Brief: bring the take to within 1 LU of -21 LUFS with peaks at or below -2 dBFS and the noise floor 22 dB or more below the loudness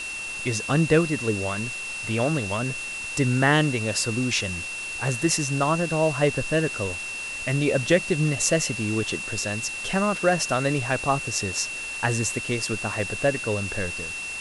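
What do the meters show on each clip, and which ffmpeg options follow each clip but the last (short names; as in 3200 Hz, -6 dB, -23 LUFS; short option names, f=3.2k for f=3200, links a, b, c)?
steady tone 2700 Hz; tone level -31 dBFS; noise floor -33 dBFS; noise floor target -47 dBFS; loudness -24.5 LUFS; peak -5.0 dBFS; loudness target -21.0 LUFS
-> -af "bandreject=f=2.7k:w=30"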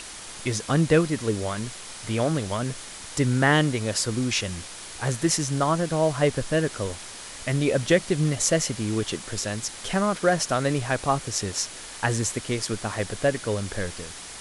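steady tone none; noise floor -40 dBFS; noise floor target -47 dBFS
-> -af "afftdn=nr=7:nf=-40"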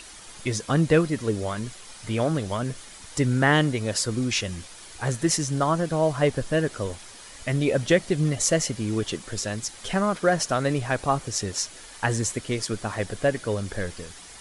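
noise floor -45 dBFS; noise floor target -48 dBFS
-> -af "afftdn=nr=6:nf=-45"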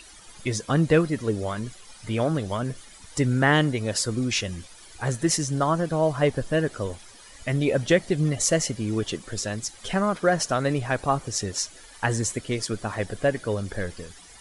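noise floor -48 dBFS; loudness -25.5 LUFS; peak -5.5 dBFS; loudness target -21.0 LUFS
-> -af "volume=4.5dB,alimiter=limit=-2dB:level=0:latency=1"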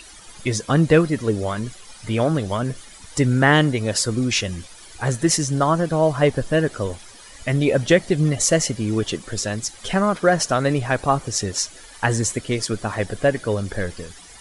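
loudness -21.0 LUFS; peak -2.0 dBFS; noise floor -44 dBFS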